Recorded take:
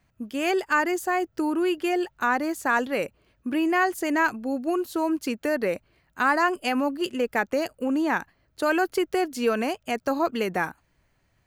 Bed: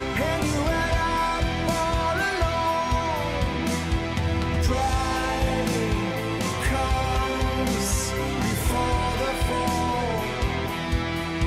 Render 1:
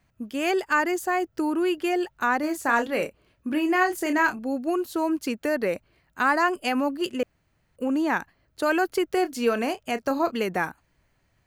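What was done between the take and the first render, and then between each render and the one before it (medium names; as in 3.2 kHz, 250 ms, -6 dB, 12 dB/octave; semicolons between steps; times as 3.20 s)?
2.40–4.39 s: doubling 30 ms -8 dB; 7.23–7.76 s: room tone; 9.07–10.36 s: doubling 30 ms -13 dB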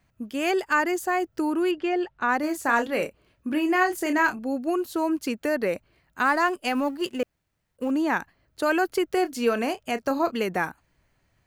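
1.71–2.29 s: distance through air 150 m; 6.25–7.91 s: companding laws mixed up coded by A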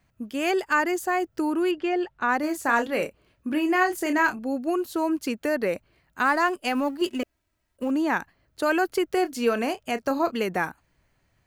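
7.01–7.83 s: comb 3.1 ms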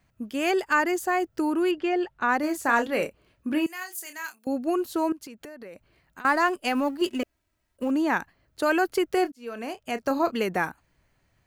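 3.66–4.47 s: differentiator; 5.12–6.25 s: compression 16:1, threshold -38 dBFS; 9.32–10.12 s: fade in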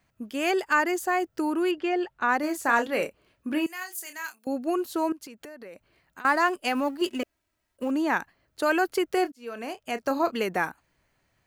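bass shelf 180 Hz -7 dB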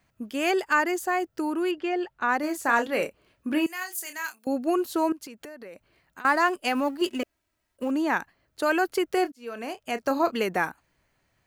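gain riding within 4 dB 2 s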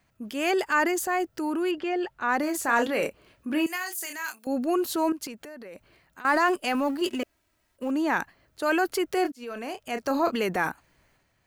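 transient shaper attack -3 dB, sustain +6 dB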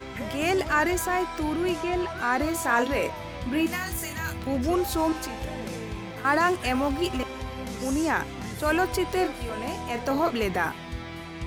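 add bed -10.5 dB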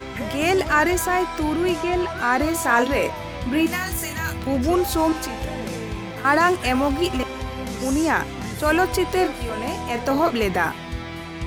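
trim +5 dB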